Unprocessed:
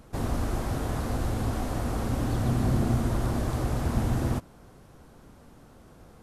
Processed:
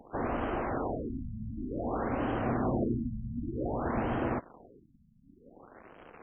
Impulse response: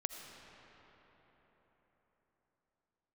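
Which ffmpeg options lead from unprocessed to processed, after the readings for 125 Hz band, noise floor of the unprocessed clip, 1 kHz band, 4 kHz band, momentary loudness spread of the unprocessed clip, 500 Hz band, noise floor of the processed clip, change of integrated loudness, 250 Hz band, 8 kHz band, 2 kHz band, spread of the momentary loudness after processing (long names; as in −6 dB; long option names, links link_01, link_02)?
−10.5 dB, −53 dBFS, +0.5 dB, below −10 dB, 5 LU, +0.5 dB, −62 dBFS, −4.5 dB, −2.5 dB, below −35 dB, −1.0 dB, 9 LU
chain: -filter_complex "[0:a]acrusher=bits=9:dc=4:mix=0:aa=0.000001,acrossover=split=260 3800:gain=0.178 1 0.2[link_01][link_02][link_03];[link_01][link_02][link_03]amix=inputs=3:normalize=0,afftfilt=real='re*lt(b*sr/1024,230*pow(3300/230,0.5+0.5*sin(2*PI*0.54*pts/sr)))':imag='im*lt(b*sr/1024,230*pow(3300/230,0.5+0.5*sin(2*PI*0.54*pts/sr)))':win_size=1024:overlap=0.75,volume=3dB"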